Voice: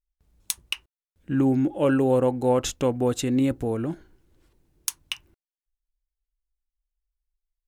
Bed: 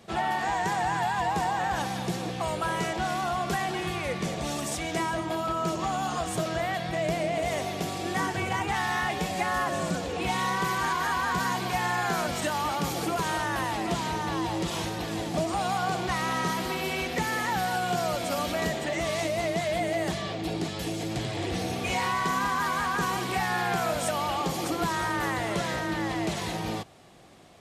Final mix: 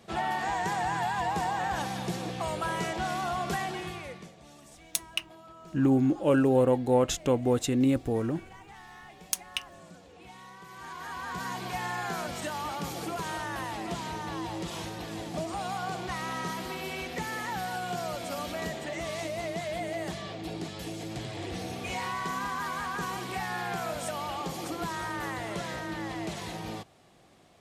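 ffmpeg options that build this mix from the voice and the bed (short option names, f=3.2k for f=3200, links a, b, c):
-filter_complex "[0:a]adelay=4450,volume=-2dB[a];[1:a]volume=12.5dB,afade=t=out:st=3.55:d=0.77:silence=0.11885,afade=t=in:st=10.67:d=1.01:silence=0.177828[b];[a][b]amix=inputs=2:normalize=0"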